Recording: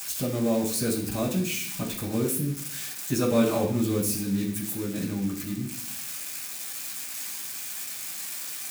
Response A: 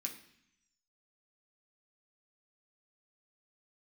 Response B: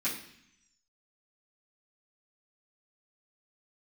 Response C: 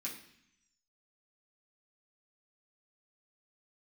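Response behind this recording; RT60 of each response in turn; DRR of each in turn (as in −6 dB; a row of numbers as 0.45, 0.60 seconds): C; 0.70, 0.70, 0.70 seconds; −0.5, −12.5, −6.5 decibels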